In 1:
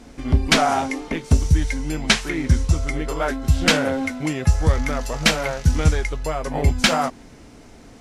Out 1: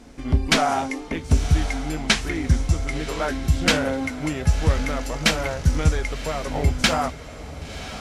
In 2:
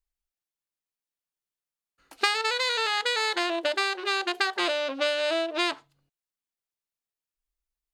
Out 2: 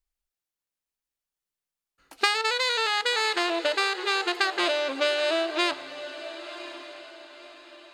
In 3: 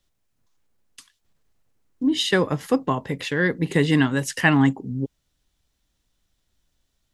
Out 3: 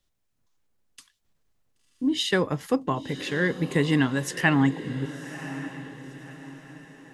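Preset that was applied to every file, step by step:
echo that smears into a reverb 1053 ms, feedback 40%, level -13 dB; peak normalisation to -6 dBFS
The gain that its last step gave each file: -2.5 dB, +1.0 dB, -3.5 dB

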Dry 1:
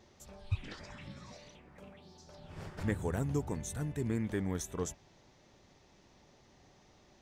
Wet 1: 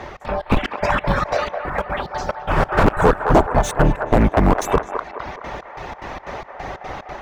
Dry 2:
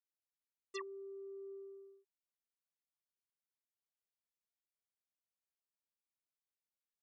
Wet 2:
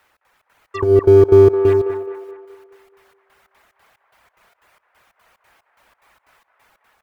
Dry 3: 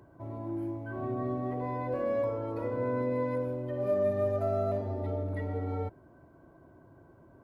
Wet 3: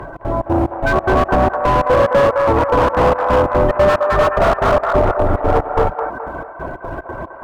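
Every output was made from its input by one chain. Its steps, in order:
octave divider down 2 oct, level +3 dB; in parallel at -4 dB: short-mantissa float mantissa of 2-bit; on the sum: reverb removal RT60 0.63 s; sine folder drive 13 dB, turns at -11 dBFS; three-band isolator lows -14 dB, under 550 Hz, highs -21 dB, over 2.3 kHz; compression 2:1, threshold -32 dBFS; dynamic bell 2.1 kHz, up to -5 dB, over -53 dBFS, Q 3; level rider gain up to 5 dB; trance gate "xx.xx.xx.." 182 bpm -24 dB; on a send: feedback echo behind a band-pass 212 ms, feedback 47%, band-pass 1 kHz, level -5 dB; on the sum: slew-rate limiter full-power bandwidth 60 Hz; peak normalisation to -1.5 dBFS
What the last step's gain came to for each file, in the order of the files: +14.0 dB, +25.5 dB, +12.5 dB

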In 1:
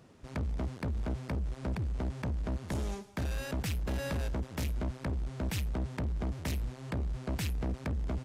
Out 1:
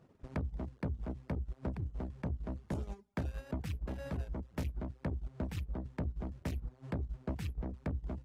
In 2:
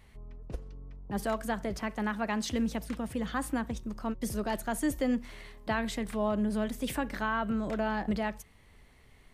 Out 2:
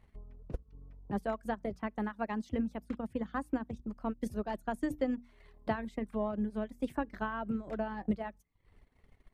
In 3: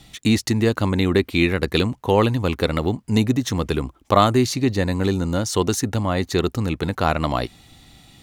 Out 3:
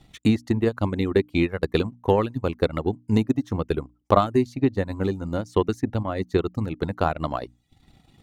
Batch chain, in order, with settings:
reverb removal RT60 0.55 s; treble shelf 2.1 kHz -11 dB; hum notches 60/120/180/240/300 Hz; transient shaper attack +6 dB, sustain -9 dB; trim -4 dB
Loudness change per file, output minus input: -5.0 LU, -4.5 LU, -4.0 LU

